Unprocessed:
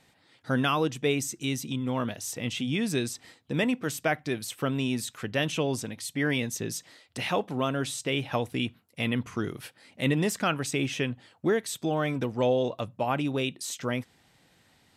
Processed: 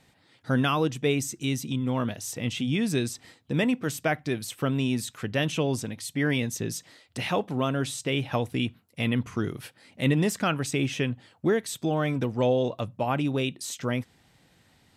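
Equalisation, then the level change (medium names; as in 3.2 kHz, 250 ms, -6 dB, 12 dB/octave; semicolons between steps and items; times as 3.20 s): bass shelf 210 Hz +5.5 dB; 0.0 dB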